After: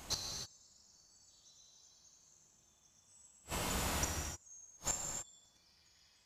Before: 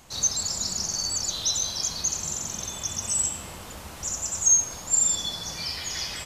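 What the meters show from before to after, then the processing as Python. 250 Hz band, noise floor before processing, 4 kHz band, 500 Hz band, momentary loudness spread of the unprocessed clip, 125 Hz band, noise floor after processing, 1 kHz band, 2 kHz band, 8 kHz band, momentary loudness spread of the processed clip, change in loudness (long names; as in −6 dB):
−7.5 dB, −41 dBFS, −16.5 dB, −6.5 dB, 11 LU, −7.0 dB, −70 dBFS, −6.5 dB, −8.0 dB, −20.5 dB, 15 LU, −15.0 dB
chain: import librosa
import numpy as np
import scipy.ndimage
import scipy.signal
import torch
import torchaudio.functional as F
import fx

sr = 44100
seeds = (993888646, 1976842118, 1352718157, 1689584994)

y = x + 10.0 ** (-5.0 / 20.0) * np.pad(x, (int(100 * sr / 1000.0), 0))[:len(x)]
y = fx.gate_flip(y, sr, shuts_db=-23.0, range_db=-40)
y = fx.rev_gated(y, sr, seeds[0], gate_ms=330, shape='flat', drr_db=0.5)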